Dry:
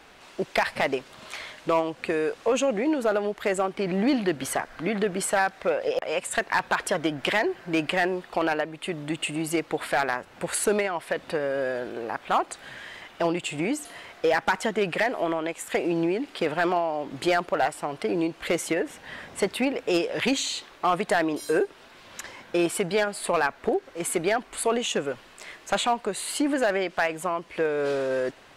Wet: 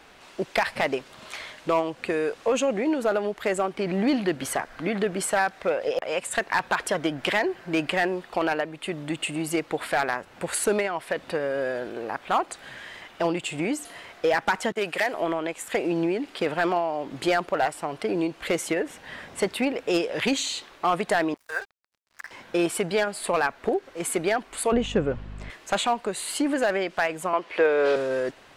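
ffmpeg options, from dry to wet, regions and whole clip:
-filter_complex "[0:a]asettb=1/sr,asplit=3[s0][s1][s2];[s0]atrim=end=14.724[s3];[s1]atrim=start=14.72:end=15.14,asetpts=PTS-STARTPTS,afade=t=in:d=0.004:c=qsin,afade=t=out:st=0.416:d=0.004:c=qsin,agate=range=0.0224:threshold=0.0251:ratio=3:release=100:detection=peak,highpass=f=410:p=1,highshelf=f=7300:g=8.5[s4];[s2]atrim=start=15.136[s5];[s3][s4]acrossfade=d=0.004:c1=hsin:c2=qsin[s6];[s6][s5]acrossfade=d=0.004:c1=qsin:c2=hsin,asettb=1/sr,asplit=3[s7][s8][s9];[s7]atrim=end=21.344[s10];[s8]atrim=start=21.34:end=22.31,asetpts=PTS-STARTPTS,afade=t=in:d=0.004:c=qsin,afade=t=out:st=0.966:d=0.004:c=qsin,highpass=f=740:w=0.5412,highpass=f=740:w=1.3066,highshelf=f=2400:t=q:w=3:g=-8.5,aeval=exprs='sgn(val(0))*max(abs(val(0))-0.00841,0)':c=same[s11];[s9]atrim=start=22.306[s12];[s10][s11]acrossfade=d=0.004:c1=hsin:c2=qsin[s13];[s13][s12]acrossfade=d=0.004:c1=qsin:c2=hsin,asettb=1/sr,asplit=3[s14][s15][s16];[s14]atrim=end=24.724[s17];[s15]atrim=start=24.72:end=25.5,asetpts=PTS-STARTPTS,afade=t=in:d=0.004:c=qsin,afade=t=out:st=0.776:d=0.004:c=qsin,aemphasis=mode=reproduction:type=riaa,aeval=exprs='val(0)+0.0141*(sin(2*PI*50*n/s)+sin(2*PI*2*50*n/s)/2+sin(2*PI*3*50*n/s)/3+sin(2*PI*4*50*n/s)/4+sin(2*PI*5*50*n/s)/5)':c=same[s18];[s16]atrim=start=25.496[s19];[s17][s18]acrossfade=d=0.004:c1=hsin:c2=qsin[s20];[s20][s19]acrossfade=d=0.004:c1=qsin:c2=hsin,asettb=1/sr,asplit=3[s21][s22][s23];[s21]atrim=end=27.334[s24];[s22]atrim=start=27.33:end=27.96,asetpts=PTS-STARTPTS,afade=t=in:d=0.004:c=qsin,afade=t=out:st=0.626:d=0.004:c=qsin,acrossover=split=310 4900:gain=0.158 1 0.251[s25][s26][s27];[s25][s26][s27]amix=inputs=3:normalize=0,acontrast=58[s28];[s23]atrim=start=27.956[s29];[s24][s28]acrossfade=d=0.004:c1=hsin:c2=qsin[s30];[s30][s29]acrossfade=d=0.004:c1=qsin:c2=hsin"

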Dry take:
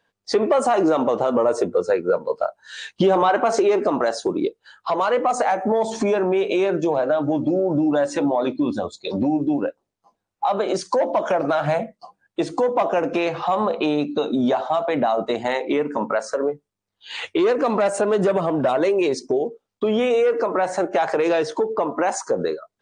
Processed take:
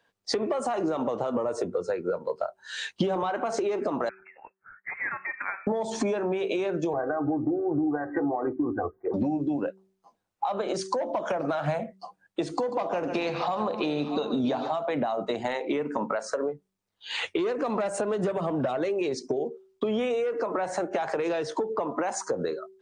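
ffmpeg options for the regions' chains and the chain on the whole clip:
-filter_complex "[0:a]asettb=1/sr,asplit=3[s0][s1][s2];[s0]atrim=end=4.094[s3];[s1]atrim=start=4.09:end=5.67,asetpts=PTS-STARTPTS,afade=t=in:d=0.004:c=qsin,afade=t=out:st=1.576:d=0.004:c=qsin,highpass=f=1400:w=0.5412,highpass=f=1400:w=1.3066,lowpass=f=2600:t=q:w=0.5098,lowpass=f=2600:t=q:w=0.6013,lowpass=f=2600:t=q:w=0.9,lowpass=f=2600:t=q:w=2.563,afreqshift=-3100[s4];[s2]atrim=start=5.666[s5];[s3][s4]acrossfade=d=0.004:c1=hsin:c2=qsin[s6];[s6][s5]acrossfade=d=0.004:c1=qsin:c2=hsin,asettb=1/sr,asplit=3[s7][s8][s9];[s7]atrim=end=6.934[s10];[s8]atrim=start=6.93:end=9.14,asetpts=PTS-STARTPTS,afade=t=in:d=0.004:c=qsin,afade=t=out:st=2.206:d=0.004:c=qsin,asuperstop=centerf=5300:order=20:qfactor=0.53,aecho=1:1:2.6:0.88,atrim=end_sample=97461[s11];[s9]atrim=start=9.136[s12];[s10][s11]acrossfade=d=0.004:c1=hsin:c2=qsin[s13];[s13][s12]acrossfade=d=0.004:c1=qsin:c2=hsin,asettb=1/sr,asplit=3[s14][s15][s16];[s14]atrim=end=12.554[s17];[s15]atrim=start=12.55:end=14.74,asetpts=PTS-STARTPTS,afade=t=in:d=0.004:c=qsin,afade=t=out:st=2.186:d=0.004:c=qsin,equalizer=f=4500:w=4.8:g=10,aecho=1:1:42|141|637:0.119|0.282|0.2,atrim=end_sample=96579[s18];[s16]atrim=start=14.736[s19];[s17][s18]acrossfade=d=0.004:c1=hsin:c2=qsin[s20];[s20][s19]acrossfade=d=0.004:c1=qsin:c2=hsin,asettb=1/sr,asplit=3[s21][s22][s23];[s21]atrim=end=18.634[s24];[s22]atrim=start=18.63:end=19.25,asetpts=PTS-STARTPTS,afade=t=in:d=0.004:c=qsin,afade=t=out:st=0.616:d=0.004:c=qsin,lowpass=8200,bandreject=f=980:w=9.5[s25];[s23]atrim=start=19.246[s26];[s24][s25]acrossfade=d=0.004:c1=hsin:c2=qsin[s27];[s27][s26]acrossfade=d=0.004:c1=qsin:c2=hsin,lowshelf=f=120:g=-4,bandreject=f=191.2:t=h:w=4,bandreject=f=382.4:t=h:w=4,acrossover=split=150[s28][s29];[s29]acompressor=threshold=0.0562:ratio=10[s30];[s28][s30]amix=inputs=2:normalize=0"

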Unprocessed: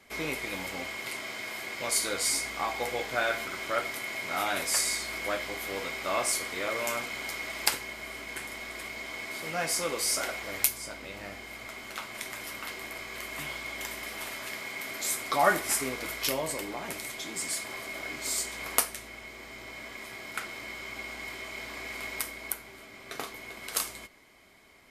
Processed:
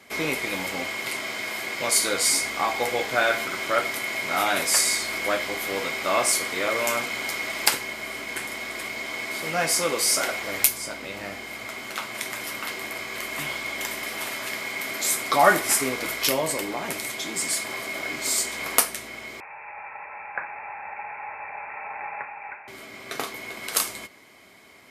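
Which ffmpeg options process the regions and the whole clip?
-filter_complex "[0:a]asettb=1/sr,asplit=3[s0][s1][s2];[s0]atrim=end=19.404[s3];[s1]atrim=start=19.4:end=22.68,asetpts=PTS-STARTPTS,afade=t=in:d=0.004:c=qsin,afade=t=out:st=3.276:d=0.004:c=qsin,highpass=f=460:w=0.5412,highpass=f=460:w=1.3066,aemphasis=mode=reproduction:type=75fm,lowpass=f=2600:t=q:w=0.5098,lowpass=f=2600:t=q:w=0.6013,lowpass=f=2600:t=q:w=0.9,lowpass=f=2600:t=q:w=2.563,afreqshift=-3000[s4];[s2]atrim=start=22.676[s5];[s3][s4]acrossfade=d=0.004:c1=hsin:c2=qsin[s6];[s6][s5]acrossfade=d=0.004:c1=qsin:c2=hsin,highpass=100,acontrast=46,volume=1.12"

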